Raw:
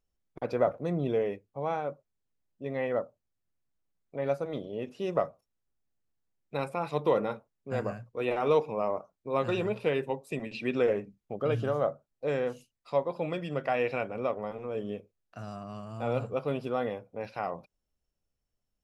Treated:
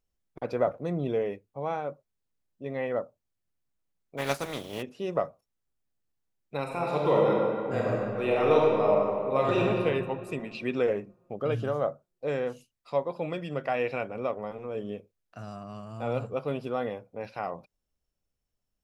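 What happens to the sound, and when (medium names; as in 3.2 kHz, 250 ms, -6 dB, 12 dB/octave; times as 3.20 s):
4.17–4.81 s: spectral contrast reduction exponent 0.49
6.62–9.66 s: reverb throw, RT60 2.3 s, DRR -3.5 dB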